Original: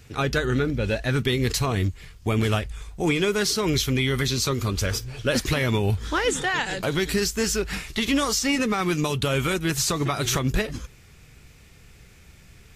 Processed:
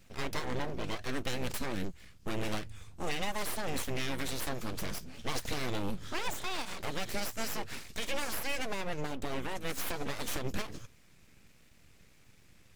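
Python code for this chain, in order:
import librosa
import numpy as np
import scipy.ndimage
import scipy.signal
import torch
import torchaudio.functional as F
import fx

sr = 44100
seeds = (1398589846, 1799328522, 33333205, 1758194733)

y = fx.high_shelf(x, sr, hz=fx.line((8.8, 3600.0), (9.55, 2100.0)), db=-11.0, at=(8.8, 9.55), fade=0.02)
y = np.abs(y)
y = y * 10.0 ** (-9.0 / 20.0)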